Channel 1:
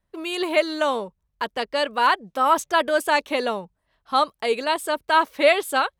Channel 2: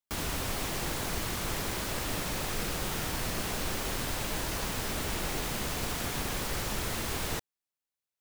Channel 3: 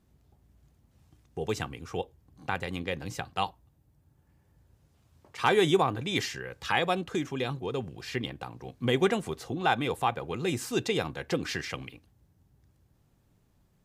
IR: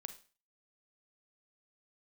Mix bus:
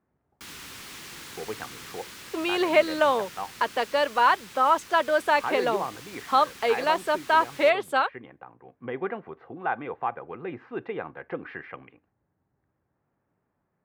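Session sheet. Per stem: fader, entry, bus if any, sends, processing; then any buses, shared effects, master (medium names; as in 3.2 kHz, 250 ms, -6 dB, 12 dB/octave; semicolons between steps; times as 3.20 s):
+2.0 dB, 2.20 s, no send, treble shelf 3 kHz -10 dB; three bands compressed up and down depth 40%
-5.5 dB, 0.30 s, no send, peaking EQ 650 Hz -14 dB 1.1 oct
-3.5 dB, 0.00 s, send -15.5 dB, low-pass 1.9 kHz 24 dB/octave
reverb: on, RT60 0.35 s, pre-delay 34 ms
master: gain riding within 3 dB 2 s; high-pass 510 Hz 6 dB/octave; treble shelf 7.4 kHz -7.5 dB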